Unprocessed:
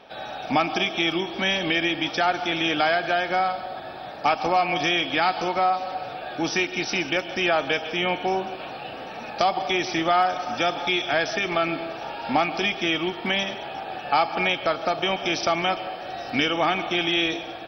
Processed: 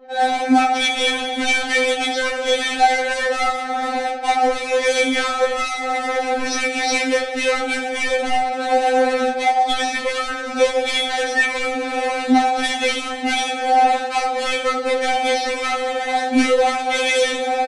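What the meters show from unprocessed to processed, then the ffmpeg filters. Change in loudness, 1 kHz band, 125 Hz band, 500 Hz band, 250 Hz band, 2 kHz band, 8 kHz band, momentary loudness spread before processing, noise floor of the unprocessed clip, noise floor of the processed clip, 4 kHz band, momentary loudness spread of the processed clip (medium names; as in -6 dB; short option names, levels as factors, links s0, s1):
+5.0 dB, +6.0 dB, under -15 dB, +6.5 dB, +5.0 dB, +5.5 dB, no reading, 11 LU, -37 dBFS, -26 dBFS, +3.5 dB, 5 LU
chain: -filter_complex "[0:a]equalizer=f=570:w=0.84:g=9.5,bandreject=f=248.7:t=h:w=4,bandreject=f=497.4:t=h:w=4,bandreject=f=746.1:t=h:w=4,dynaudnorm=f=110:g=3:m=5.01,asplit=2[s0][s1];[s1]aecho=0:1:16|78:0.596|0.355[s2];[s0][s2]amix=inputs=2:normalize=0,asoftclip=type=hard:threshold=0.251,adynamicsmooth=sensitivity=4.5:basefreq=1100,asplit=2[s3][s4];[s4]adelay=16,volume=0.224[s5];[s3][s5]amix=inputs=2:normalize=0,aresample=22050,aresample=44100,afftfilt=real='re*3.46*eq(mod(b,12),0)':imag='im*3.46*eq(mod(b,12),0)':win_size=2048:overlap=0.75"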